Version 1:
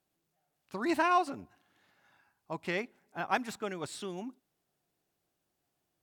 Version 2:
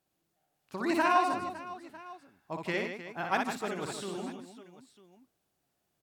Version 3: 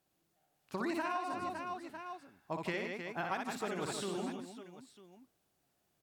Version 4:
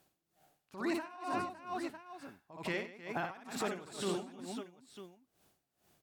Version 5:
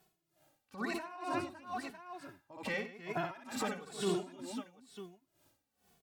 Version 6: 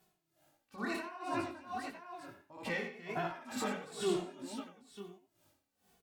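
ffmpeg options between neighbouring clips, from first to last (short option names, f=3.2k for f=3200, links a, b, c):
-af "aecho=1:1:60|156|309.6|555.4|948.6:0.631|0.398|0.251|0.158|0.1"
-af "acompressor=threshold=-34dB:ratio=12,volume=1dB"
-af "alimiter=level_in=10.5dB:limit=-24dB:level=0:latency=1:release=39,volume=-10.5dB,aeval=exprs='val(0)*pow(10,-19*(0.5-0.5*cos(2*PI*2.2*n/s))/20)':c=same,volume=9.5dB"
-filter_complex "[0:a]asplit=2[a][b];[b]adelay=2.3,afreqshift=-1[c];[a][c]amix=inputs=2:normalize=1,volume=3.5dB"
-filter_complex "[0:a]asplit=2[a][b];[b]adelay=90,highpass=300,lowpass=3.4k,asoftclip=type=hard:threshold=-30.5dB,volume=-9dB[c];[a][c]amix=inputs=2:normalize=0,flanger=delay=17:depth=7.8:speed=1.5,volume=2.5dB"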